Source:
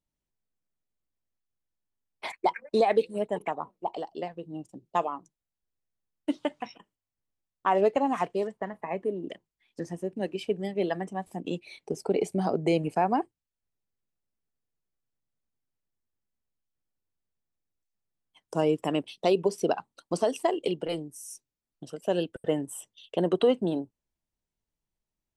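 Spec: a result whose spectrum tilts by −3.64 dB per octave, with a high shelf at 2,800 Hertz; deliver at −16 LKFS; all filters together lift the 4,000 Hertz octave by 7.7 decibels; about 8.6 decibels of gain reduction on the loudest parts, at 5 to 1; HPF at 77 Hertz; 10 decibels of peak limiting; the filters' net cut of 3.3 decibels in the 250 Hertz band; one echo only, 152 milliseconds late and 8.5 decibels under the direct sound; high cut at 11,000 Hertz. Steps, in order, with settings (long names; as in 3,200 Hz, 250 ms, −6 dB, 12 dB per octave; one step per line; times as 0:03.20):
high-pass filter 77 Hz
low-pass filter 11,000 Hz
parametric band 250 Hz −5 dB
high-shelf EQ 2,800 Hz +6.5 dB
parametric band 4,000 Hz +5.5 dB
downward compressor 5 to 1, threshold −28 dBFS
brickwall limiter −24.5 dBFS
single-tap delay 152 ms −8.5 dB
level +21 dB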